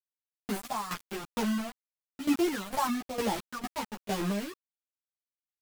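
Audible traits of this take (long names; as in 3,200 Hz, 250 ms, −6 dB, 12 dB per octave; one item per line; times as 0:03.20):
phaser sweep stages 4, 1 Hz, lowest notch 370–2,100 Hz
a quantiser's noise floor 6 bits, dither none
tremolo saw down 2.2 Hz, depth 80%
a shimmering, thickened sound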